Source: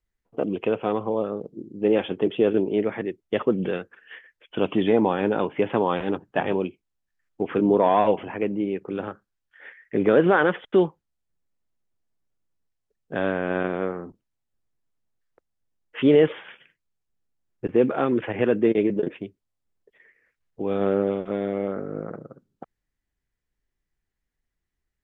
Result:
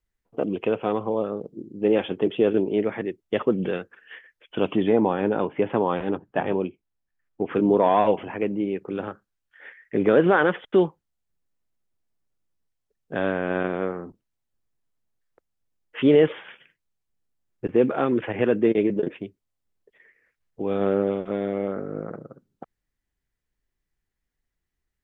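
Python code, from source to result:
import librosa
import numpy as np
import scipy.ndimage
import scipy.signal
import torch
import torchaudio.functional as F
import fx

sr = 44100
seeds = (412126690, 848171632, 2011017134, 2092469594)

y = fx.high_shelf(x, sr, hz=3000.0, db=-9.5, at=(4.76, 7.51))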